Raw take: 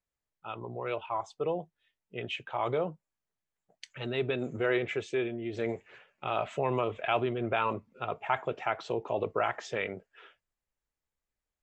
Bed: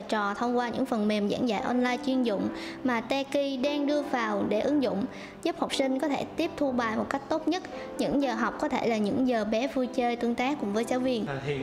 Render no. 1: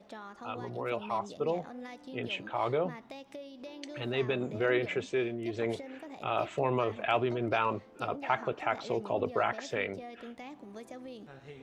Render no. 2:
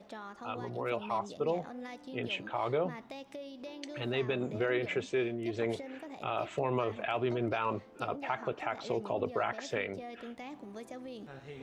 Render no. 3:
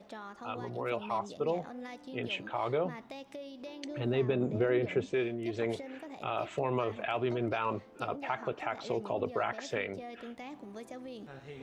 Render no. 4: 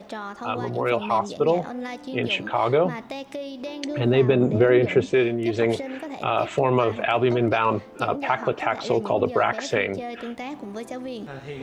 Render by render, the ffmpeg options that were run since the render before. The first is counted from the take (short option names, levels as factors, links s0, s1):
-filter_complex "[1:a]volume=0.126[s0];[0:a][s0]amix=inputs=2:normalize=0"
-af "areverse,acompressor=mode=upward:threshold=0.00891:ratio=2.5,areverse,alimiter=limit=0.0841:level=0:latency=1:release=153"
-filter_complex "[0:a]asettb=1/sr,asplit=3[s0][s1][s2];[s0]atrim=end=3.844[s3];[s1]atrim=start=3.84:end=5.14,asetpts=PTS-STARTPTS,afade=t=in:d=0.004:c=qsin,afade=t=out:st=1.296:d=0.004:c=qsin,tiltshelf=f=820:g=5.5[s4];[s2]atrim=start=5.136[s5];[s3][s4]acrossfade=d=0.004:c1=hsin:c2=qsin[s6];[s6][s5]acrossfade=d=0.004:c1=qsin:c2=hsin"
-af "volume=3.76"